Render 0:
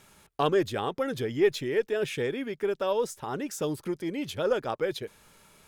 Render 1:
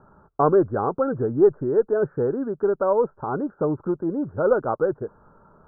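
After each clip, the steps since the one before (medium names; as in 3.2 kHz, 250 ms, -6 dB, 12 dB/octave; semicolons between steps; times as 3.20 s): steep low-pass 1.5 kHz 96 dB/octave; trim +7 dB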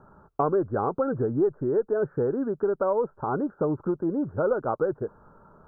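compression 3:1, threshold -22 dBFS, peak gain reduction 9 dB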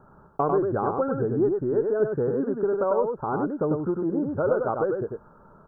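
delay 98 ms -4 dB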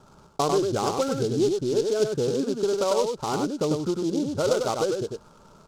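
delay time shaken by noise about 4.7 kHz, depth 0.052 ms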